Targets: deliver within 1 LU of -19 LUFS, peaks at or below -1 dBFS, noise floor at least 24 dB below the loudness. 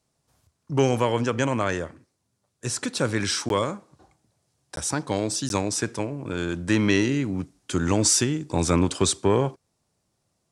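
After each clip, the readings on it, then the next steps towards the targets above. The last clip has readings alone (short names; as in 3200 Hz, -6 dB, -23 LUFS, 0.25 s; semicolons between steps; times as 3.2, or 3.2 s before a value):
dropouts 3; longest dropout 12 ms; loudness -24.5 LUFS; peak -7.0 dBFS; loudness target -19.0 LUFS
-> interpolate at 3.49/4.76/5.49, 12 ms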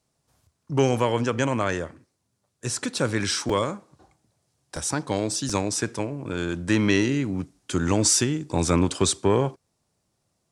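dropouts 0; loudness -24.5 LUFS; peak -7.0 dBFS; loudness target -19.0 LUFS
-> gain +5.5 dB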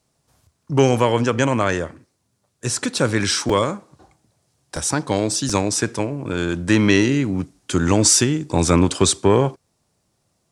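loudness -19.0 LUFS; peak -1.5 dBFS; noise floor -70 dBFS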